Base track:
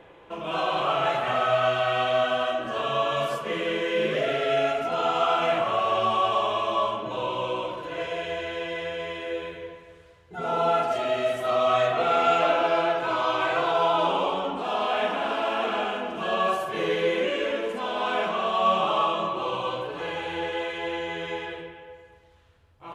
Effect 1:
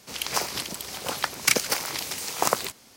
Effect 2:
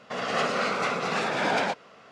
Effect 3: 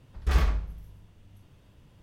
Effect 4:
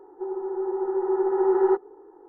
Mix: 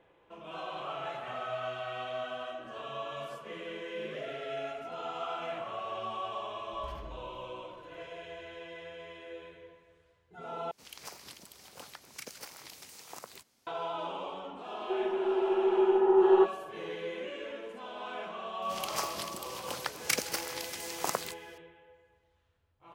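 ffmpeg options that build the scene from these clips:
ffmpeg -i bed.wav -i cue0.wav -i cue1.wav -i cue2.wav -i cue3.wav -filter_complex "[1:a]asplit=2[link_01][link_02];[0:a]volume=-14dB[link_03];[3:a]acompressor=threshold=-25dB:ratio=6:attack=3.2:release=140:knee=1:detection=peak[link_04];[link_01]alimiter=limit=-10dB:level=0:latency=1:release=117[link_05];[link_03]asplit=2[link_06][link_07];[link_06]atrim=end=10.714[link_08];[link_05]atrim=end=2.96,asetpts=PTS-STARTPTS,volume=-18dB[link_09];[link_07]atrim=start=13.666[link_10];[link_04]atrim=end=2.02,asetpts=PTS-STARTPTS,volume=-16dB,afade=type=in:duration=0.004:curve=hsin,afade=type=out:start_time=2.016:duration=0.004:curve=hsin,adelay=6570[link_11];[4:a]atrim=end=2.28,asetpts=PTS-STARTPTS,volume=-1.5dB,afade=type=in:duration=0.004:curve=hsin,afade=type=out:start_time=2.276:duration=0.004:curve=hsin,adelay=14690[link_12];[link_02]atrim=end=2.96,asetpts=PTS-STARTPTS,volume=-9dB,afade=type=in:duration=0.004:curve=hsin,afade=type=out:start_time=2.956:duration=0.004:curve=hsin,adelay=18620[link_13];[link_08][link_09]acrossfade=duration=0.004:curve1=hsin:curve2=hsin[link_14];[link_14][link_10]acrossfade=duration=0.004:curve1=hsin:curve2=hsin[link_15];[link_15][link_11][link_12][link_13]amix=inputs=4:normalize=0" out.wav

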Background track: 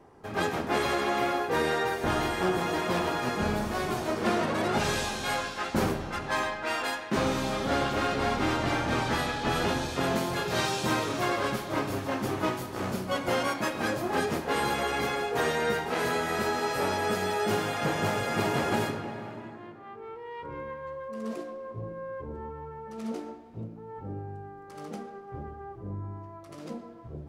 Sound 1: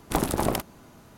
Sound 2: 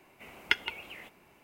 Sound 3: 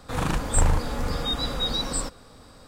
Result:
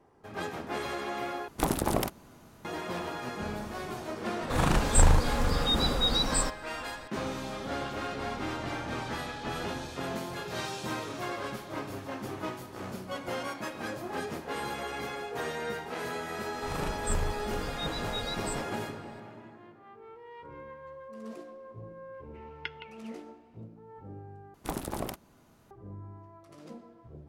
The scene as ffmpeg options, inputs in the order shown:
ffmpeg -i bed.wav -i cue0.wav -i cue1.wav -i cue2.wav -filter_complex "[1:a]asplit=2[link_01][link_02];[3:a]asplit=2[link_03][link_04];[0:a]volume=-7.5dB[link_05];[2:a]lowpass=frequency=5100:width=0.5412,lowpass=frequency=5100:width=1.3066[link_06];[link_05]asplit=3[link_07][link_08][link_09];[link_07]atrim=end=1.484[link_10];[link_01]atrim=end=1.17,asetpts=PTS-STARTPTS,volume=-3dB[link_11];[link_08]atrim=start=2.646:end=24.544[link_12];[link_02]atrim=end=1.17,asetpts=PTS-STARTPTS,volume=-10dB[link_13];[link_09]atrim=start=25.706[link_14];[link_03]atrim=end=2.67,asetpts=PTS-STARTPTS,afade=type=in:duration=0.004:curve=hsin,afade=type=out:start_time=2.666:duration=0.004:curve=hsin,adelay=194481S[link_15];[link_04]atrim=end=2.67,asetpts=PTS-STARTPTS,volume=-10.5dB,afade=type=in:duration=0.004:curve=hsin,afade=type=out:start_time=2.666:duration=0.004:curve=hsin,adelay=16530[link_16];[link_06]atrim=end=1.43,asetpts=PTS-STARTPTS,volume=-12dB,afade=type=in:duration=0.004:curve=hsin,afade=type=out:start_time=1.426:duration=0.004:curve=hsin,adelay=22140[link_17];[link_10][link_11]acrossfade=duration=0.004:curve1=hsin:curve2=hsin[link_18];[link_18][link_12]acrossfade=duration=0.004:curve1=hsin:curve2=hsin[link_19];[link_19][link_13]acrossfade=duration=0.004:curve1=hsin:curve2=hsin[link_20];[link_20][link_14]acrossfade=duration=0.004:curve1=hsin:curve2=hsin[link_21];[link_21][link_15][link_16][link_17]amix=inputs=4:normalize=0" out.wav

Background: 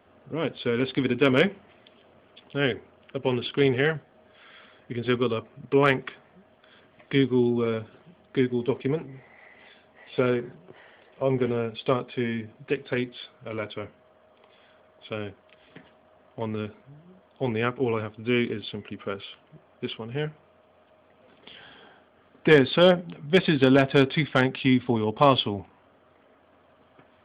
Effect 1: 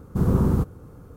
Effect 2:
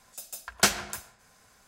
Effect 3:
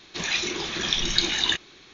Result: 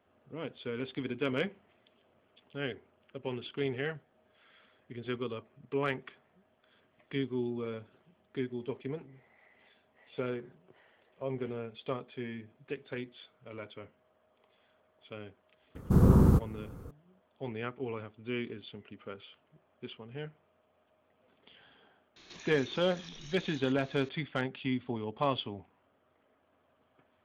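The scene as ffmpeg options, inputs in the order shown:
ffmpeg -i bed.wav -i cue0.wav -i cue1.wav -i cue2.wav -filter_complex "[0:a]volume=-12dB[link_01];[3:a]acompressor=threshold=-41dB:ratio=6:attack=3.2:release=140:knee=1:detection=peak[link_02];[1:a]atrim=end=1.16,asetpts=PTS-STARTPTS,volume=-1.5dB,afade=type=in:duration=0.004:curve=hsin,afade=type=out:start_time=1.156:duration=0.004:curve=hsin,adelay=15750[link_03];[link_02]atrim=end=1.93,asetpts=PTS-STARTPTS,volume=-6.5dB,afade=type=in:duration=0.004:curve=hsin,afade=type=out:start_time=1.926:duration=0.004:curve=hsin,adelay=22160[link_04];[link_01][link_03][link_04]amix=inputs=3:normalize=0" out.wav

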